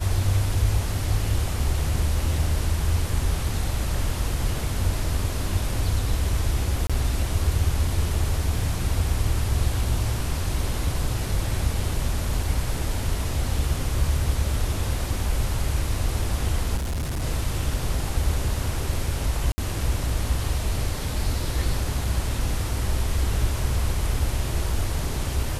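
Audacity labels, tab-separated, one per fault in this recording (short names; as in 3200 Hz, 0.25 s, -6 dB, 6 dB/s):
6.870000	6.900000	gap 26 ms
16.760000	17.230000	clipped -24 dBFS
19.520000	19.580000	gap 60 ms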